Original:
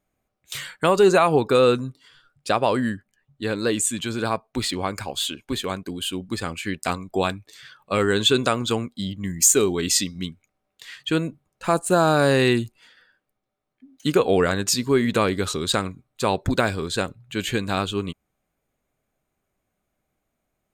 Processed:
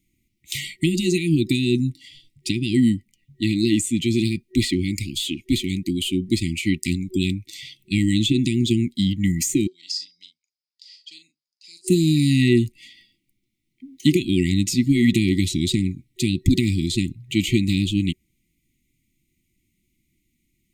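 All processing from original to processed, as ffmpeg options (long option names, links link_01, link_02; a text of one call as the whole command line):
ffmpeg -i in.wav -filter_complex "[0:a]asettb=1/sr,asplit=3[link_01][link_02][link_03];[link_01]atrim=end=9.674[link_04];[link_02]atrim=start=9.67:end=11.88,asetpts=PTS-STARTPTS,afade=type=in:duration=0.004:curve=qsin,afade=type=out:start_time=2.206:duration=0.004:curve=qsin,bandpass=frequency=4900:width_type=q:width=12,asplit=2[link_05][link_06];[link_06]adelay=41,volume=-9dB[link_07];[link_05][link_07]amix=inputs=2:normalize=0,atrim=end_sample=97461[link_08];[link_03]atrim=start=11.876[link_09];[link_04][link_08]acrossfade=duration=0.004:curve1=hsin:curve2=qsin[link_10];[link_10][link_09]acrossfade=duration=0.004:curve1=qsin:curve2=hsin,acrossover=split=760|1800[link_11][link_12][link_13];[link_11]acompressor=threshold=-19dB:ratio=4[link_14];[link_12]acompressor=threshold=-39dB:ratio=4[link_15];[link_13]acompressor=threshold=-36dB:ratio=4[link_16];[link_14][link_15][link_16]amix=inputs=3:normalize=0,afftfilt=real='re*(1-between(b*sr/4096,370,1900))':imag='im*(1-between(b*sr/4096,370,1900))':win_size=4096:overlap=0.75,volume=8.5dB" out.wav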